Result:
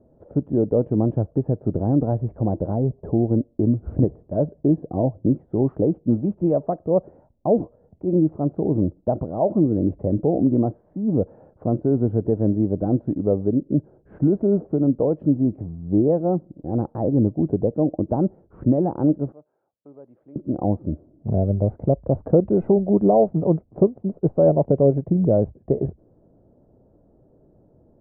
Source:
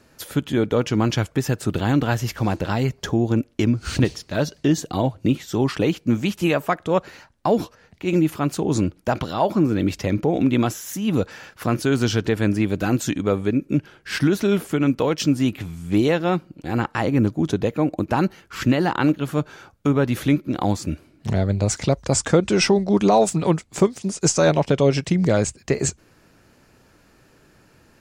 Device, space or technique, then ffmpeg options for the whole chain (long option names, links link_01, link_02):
under water: -filter_complex "[0:a]lowpass=frequency=650:width=0.5412,lowpass=frequency=650:width=1.3066,equalizer=frequency=630:width_type=o:width=0.52:gain=4.5,asettb=1/sr,asplit=3[link_01][link_02][link_03];[link_01]atrim=end=19.324[link_04];[link_02]atrim=start=19.32:end=20.36,asetpts=PTS-STARTPTS,afade=type=in:duration=0.004:curve=qsin,afade=type=out:start_time=1.036:duration=0.004:curve=qsin,aderivative[link_05];[link_03]atrim=start=20.356[link_06];[link_04][link_05]acrossfade=duration=0.004:curve1=hsin:curve2=qsin[link_07];[link_07][link_06]acrossfade=duration=0.004:curve1=qsin:curve2=hsin"